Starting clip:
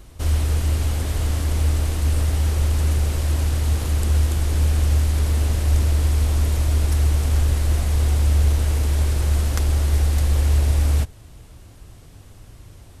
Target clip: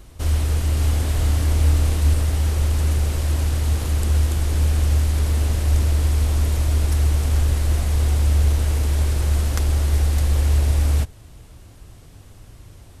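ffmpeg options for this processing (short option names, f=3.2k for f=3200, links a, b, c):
-filter_complex "[0:a]asettb=1/sr,asplit=3[a][b][c];[a]atrim=end=0.744[d];[b]atrim=start=0.74:end=2.14,asetpts=PTS-STARTPTS,afade=t=in:d=0.004:c=qsin,afade=t=out:st=1.396:d=0.004:c=qsin,asplit=2[e][f];[f]adelay=28,volume=-5dB[g];[e][g]amix=inputs=2:normalize=0,atrim=end_sample=61740[h];[c]atrim=start=2.136[i];[d][h]acrossfade=d=0.004:c1=hsin:c2=qsin[j];[j][i]acrossfade=d=0.004:c1=qsin:c2=hsin"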